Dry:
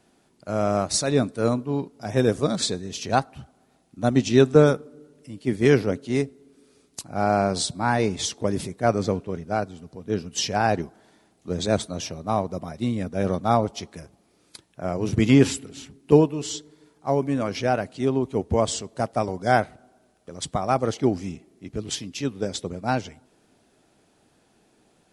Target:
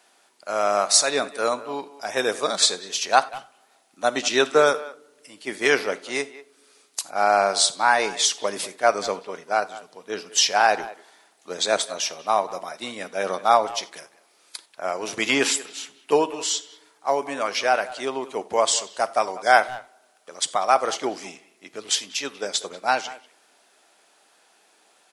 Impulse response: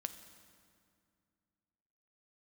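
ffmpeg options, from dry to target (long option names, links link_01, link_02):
-filter_complex "[0:a]highpass=790,asplit=2[link_01][link_02];[link_02]adelay=190,highpass=300,lowpass=3400,asoftclip=type=hard:threshold=-18dB,volume=-17dB[link_03];[link_01][link_03]amix=inputs=2:normalize=0,asplit=2[link_04][link_05];[1:a]atrim=start_sample=2205,atrim=end_sample=4410[link_06];[link_05][link_06]afir=irnorm=-1:irlink=0,volume=7dB[link_07];[link_04][link_07]amix=inputs=2:normalize=0,volume=-1dB"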